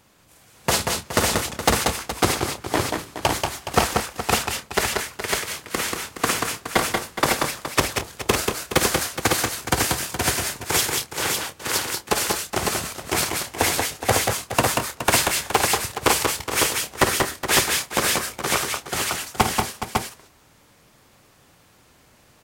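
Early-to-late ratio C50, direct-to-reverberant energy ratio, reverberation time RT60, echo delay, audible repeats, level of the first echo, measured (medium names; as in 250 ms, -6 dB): no reverb, no reverb, no reverb, 53 ms, 4, -11.0 dB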